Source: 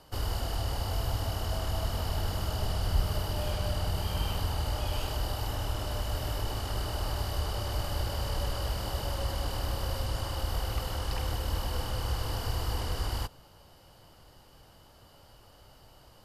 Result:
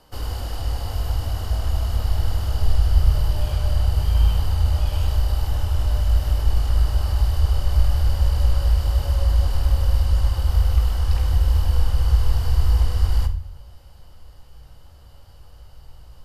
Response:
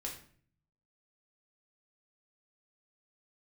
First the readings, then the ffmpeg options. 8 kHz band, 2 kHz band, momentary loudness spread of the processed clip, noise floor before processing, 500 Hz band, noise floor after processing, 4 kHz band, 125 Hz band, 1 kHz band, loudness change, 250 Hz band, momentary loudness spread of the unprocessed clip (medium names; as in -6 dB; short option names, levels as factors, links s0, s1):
+1.0 dB, +1.5 dB, 6 LU, -57 dBFS, +0.5 dB, -45 dBFS, +1.0 dB, +12.0 dB, +1.0 dB, +11.0 dB, +1.5 dB, 2 LU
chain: -filter_complex "[0:a]asplit=2[s0][s1];[s1]asubboost=boost=6.5:cutoff=110[s2];[1:a]atrim=start_sample=2205[s3];[s2][s3]afir=irnorm=-1:irlink=0,volume=1.19[s4];[s0][s4]amix=inputs=2:normalize=0,volume=0.631"